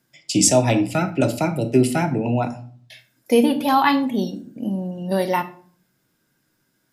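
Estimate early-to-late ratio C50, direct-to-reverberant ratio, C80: 14.0 dB, 7.0 dB, 18.5 dB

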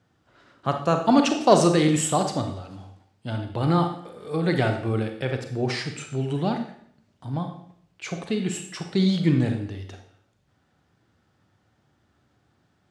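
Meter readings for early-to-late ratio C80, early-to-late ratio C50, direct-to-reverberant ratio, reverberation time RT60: 11.0 dB, 7.0 dB, 5.0 dB, 0.65 s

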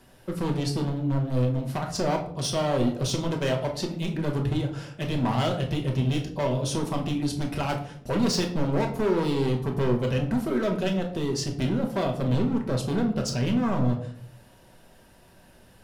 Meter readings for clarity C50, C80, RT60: 9.0 dB, 13.0 dB, 0.65 s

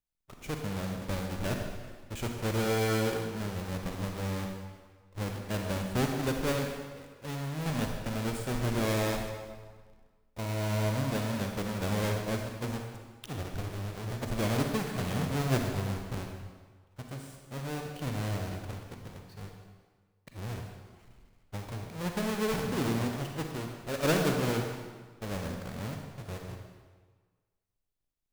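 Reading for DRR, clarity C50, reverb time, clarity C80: 2.5 dB, 3.5 dB, 1.5 s, 5.0 dB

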